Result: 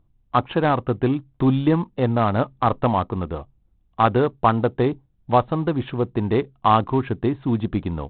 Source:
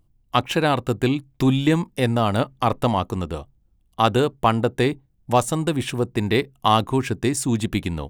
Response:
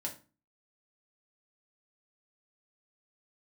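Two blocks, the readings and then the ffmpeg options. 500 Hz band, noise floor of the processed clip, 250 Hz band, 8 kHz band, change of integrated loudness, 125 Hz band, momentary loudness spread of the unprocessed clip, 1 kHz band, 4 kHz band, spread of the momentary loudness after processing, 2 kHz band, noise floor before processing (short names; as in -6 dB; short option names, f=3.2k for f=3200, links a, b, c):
+0.5 dB, -63 dBFS, 0.0 dB, under -40 dB, 0.0 dB, 0.0 dB, 5 LU, +1.5 dB, -9.0 dB, 6 LU, -4.0 dB, -63 dBFS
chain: -af "highshelf=f=1.6k:t=q:w=1.5:g=-7" -ar 8000 -c:a adpcm_ima_wav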